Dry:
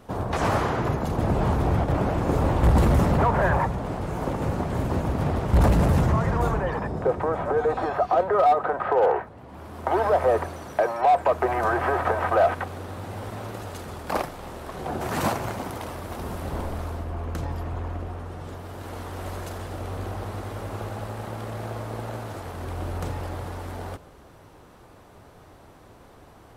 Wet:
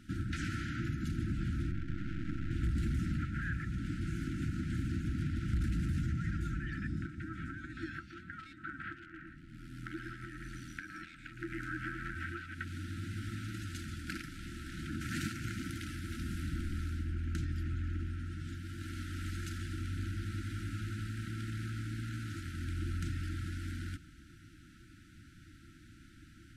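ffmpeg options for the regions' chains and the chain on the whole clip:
ffmpeg -i in.wav -filter_complex "[0:a]asettb=1/sr,asplit=3[link_01][link_02][link_03];[link_01]atrim=end=1.714[link_04];[link_02]atrim=start=1.71:end=2.51,asetpts=PTS-STARTPTS,afade=type=in:duration=0.004:curve=qsin,afade=type=out:start_time=0.796:duration=0.004:curve=qsin,lowpass=frequency=2000:poles=1,aeval=exprs='max(val(0),0)':channel_layout=same[link_05];[link_03]atrim=start=2.506[link_06];[link_04][link_05]acrossfade=duration=0.004:curve1=hsin:curve2=qsin[link_07];[link_07][link_06]acrossfade=duration=0.004:curve1=qsin:curve2=hsin,asettb=1/sr,asplit=3[link_08][link_09][link_10];[link_08]atrim=end=9.034[link_11];[link_09]atrim=start=9.03:end=12.16,asetpts=PTS-STARTPTS,afade=type=in:duration=0.004:curve=qsin,afade=type=out:start_time=3.126:duration=0.004:curve=qsin,aeval=exprs='val(0)*sin(2*PI*42*n/s)':channel_layout=same,aecho=1:1:113:0.398,atrim=end_sample=138033[link_12];[link_10]atrim=start=12.156[link_13];[link_11][link_12]acrossfade=duration=0.004:curve1=hsin:curve2=qsin[link_14];[link_14][link_13]acrossfade=duration=0.004:curve1=qsin:curve2=hsin,acompressor=threshold=-27dB:ratio=6,afftfilt=real='re*(1-between(b*sr/4096,350,1300))':imag='im*(1-between(b*sr/4096,350,1300))':win_size=4096:overlap=0.75,lowpass=9700,volume=-3.5dB" out.wav

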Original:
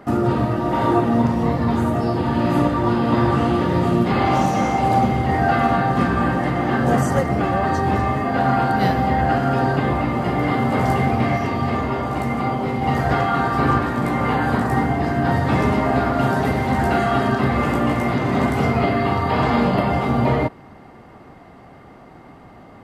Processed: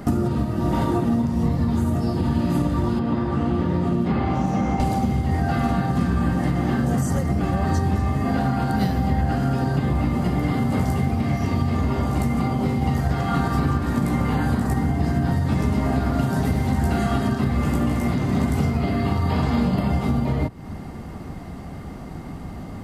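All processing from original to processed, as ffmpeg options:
ffmpeg -i in.wav -filter_complex "[0:a]asettb=1/sr,asplit=3[link_01][link_02][link_03];[link_01]atrim=end=2.994[link_04];[link_02]atrim=start=2.99:end=4.8,asetpts=PTS-STARTPTS,afade=type=in:duration=0.004:curve=qsin,afade=type=out:start_time=1.806:duration=0.004:curve=qsin,highshelf=frequency=6400:gain=-11.5,acrossover=split=200|2700[link_05][link_06][link_07];[link_05]acompressor=threshold=-32dB:ratio=4[link_08];[link_06]acompressor=threshold=-22dB:ratio=4[link_09];[link_07]acompressor=threshold=-54dB:ratio=4[link_10];[link_08][link_09][link_10]amix=inputs=3:normalize=0[link_11];[link_03]atrim=start=4.796[link_12];[link_04][link_11]acrossfade=duration=0.004:curve1=hsin:curve2=qsin[link_13];[link_13][link_12]acrossfade=duration=0.004:curve1=qsin:curve2=hsin,bass=frequency=250:gain=15,treble=frequency=4000:gain=12,acompressor=threshold=-19dB:ratio=6,equalizer=frequency=120:width_type=o:width=0.2:gain=-12.5,volume=2dB" out.wav

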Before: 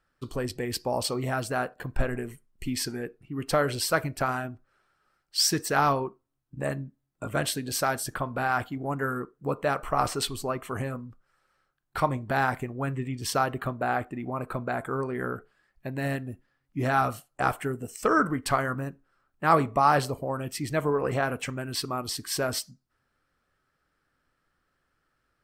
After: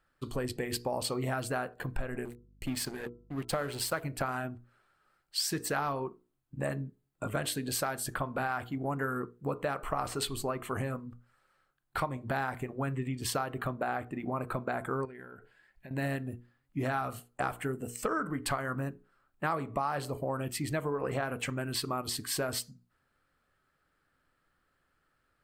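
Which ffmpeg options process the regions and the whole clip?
ffmpeg -i in.wav -filter_complex "[0:a]asettb=1/sr,asplit=3[link_01][link_02][link_03];[link_01]atrim=end=2.254[link_04];[link_02]atrim=start=2.25:end=4.03,asetpts=PTS-STARTPTS,afade=type=in:duration=0.004:curve=qsin,afade=type=out:start_time=1.776:duration=0.004:curve=qsin,aeval=exprs='sgn(val(0))*max(abs(val(0))-0.00841,0)':channel_layout=same,bandreject=frequency=332.8:width_type=h:width=4,bandreject=frequency=665.6:width_type=h:width=4,bandreject=frequency=998.4:width_type=h:width=4,bandreject=frequency=1331.2:width_type=h:width=4,aeval=exprs='val(0)+0.001*(sin(2*PI*50*n/s)+sin(2*PI*2*50*n/s)/2+sin(2*PI*3*50*n/s)/3+sin(2*PI*4*50*n/s)/4+sin(2*PI*5*50*n/s)/5)':channel_layout=same[link_05];[link_03]atrim=start=4.026[link_06];[link_04][link_05]acrossfade=duration=0.004:curve1=hsin:curve2=qsin[link_07];[link_07][link_06]acrossfade=duration=0.004:curve1=qsin:curve2=hsin,asettb=1/sr,asplit=3[link_08][link_09][link_10];[link_08]atrim=end=15.054[link_11];[link_09]atrim=start=15.05:end=15.91,asetpts=PTS-STARTPTS,afade=type=in:duration=0.004:curve=qsin,afade=type=out:start_time=0.856:duration=0.004:curve=qsin,equalizer=frequency=2100:width_type=o:width=1.7:gain=5.5,acompressor=threshold=-44dB:ratio=8:attack=3.2:release=140:knee=1:detection=peak,asuperstop=centerf=1200:order=4:qfactor=5.3[link_12];[link_10]atrim=start=15.906[link_13];[link_11][link_12]acrossfade=duration=0.004:curve1=hsin:curve2=qsin[link_14];[link_14][link_13]acrossfade=duration=0.004:curve1=qsin:curve2=hsin,equalizer=frequency=5600:width_type=o:width=0.27:gain=-7,bandreject=frequency=60:width_type=h:width=6,bandreject=frequency=120:width_type=h:width=6,bandreject=frequency=180:width_type=h:width=6,bandreject=frequency=240:width_type=h:width=6,bandreject=frequency=300:width_type=h:width=6,bandreject=frequency=360:width_type=h:width=6,bandreject=frequency=420:width_type=h:width=6,bandreject=frequency=480:width_type=h:width=6,acompressor=threshold=-29dB:ratio=6" out.wav

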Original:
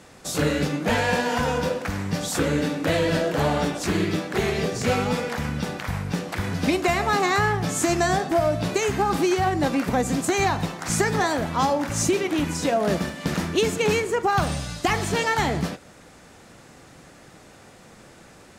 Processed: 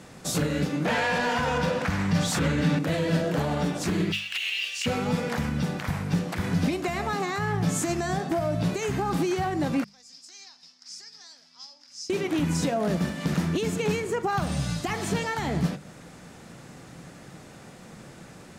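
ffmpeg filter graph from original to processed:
ffmpeg -i in.wav -filter_complex "[0:a]asettb=1/sr,asplit=3[link_01][link_02][link_03];[link_01]atrim=end=0.854[link_04];[link_02]atrim=start=0.85:end=2.79,asetpts=PTS-STARTPTS,afade=type=in:duration=0.004:curve=qsin,afade=type=out:start_time=1.936:duration=0.004:curve=qsin,asubboost=boost=11:cutoff=160,asplit=2[link_05][link_06];[link_06]highpass=frequency=720:poles=1,volume=18dB,asoftclip=type=tanh:threshold=-4.5dB[link_07];[link_05][link_07]amix=inputs=2:normalize=0,lowpass=frequency=3300:poles=1,volume=-6dB[link_08];[link_03]atrim=start=2.786[link_09];[link_04][link_08]acrossfade=duration=0.004:curve1=hsin:curve2=qsin[link_10];[link_10][link_09]acrossfade=duration=0.004:curve1=qsin:curve2=hsin,asettb=1/sr,asplit=3[link_11][link_12][link_13];[link_11]atrim=end=4.124[link_14];[link_12]atrim=start=4.12:end=4.86,asetpts=PTS-STARTPTS,afade=type=in:duration=0.004:curve=qsin,afade=type=out:start_time=0.736:duration=0.004:curve=qsin,highpass=frequency=2800:width_type=q:width=11,acrusher=bits=7:mode=log:mix=0:aa=0.000001[link_15];[link_13]atrim=start=4.856[link_16];[link_14][link_15]acrossfade=duration=0.004:curve1=hsin:curve2=qsin[link_17];[link_17][link_16]acrossfade=duration=0.004:curve1=qsin:curve2=hsin,asettb=1/sr,asplit=3[link_18][link_19][link_20];[link_18]atrim=end=9.844[link_21];[link_19]atrim=start=9.84:end=12.1,asetpts=PTS-STARTPTS,afade=type=in:duration=0.004:curve=qsin,afade=type=out:start_time=2.256:duration=0.004:curve=qsin,bandpass=frequency=5100:width_type=q:width=12,aeval=exprs='val(0)+0.000891*(sin(2*PI*50*n/s)+sin(2*PI*2*50*n/s)/2+sin(2*PI*3*50*n/s)/3+sin(2*PI*4*50*n/s)/4+sin(2*PI*5*50*n/s)/5)':channel_layout=same[link_22];[link_20]atrim=start=12.096[link_23];[link_21][link_22]acrossfade=duration=0.004:curve1=hsin:curve2=qsin[link_24];[link_24][link_23]acrossfade=duration=0.004:curve1=qsin:curve2=hsin,alimiter=limit=-19dB:level=0:latency=1:release=270,equalizer=frequency=160:width_type=o:width=1.1:gain=8.5,bandreject=frequency=50:width_type=h:width=6,bandreject=frequency=100:width_type=h:width=6,bandreject=frequency=150:width_type=h:width=6,bandreject=frequency=200:width_type=h:width=6" out.wav

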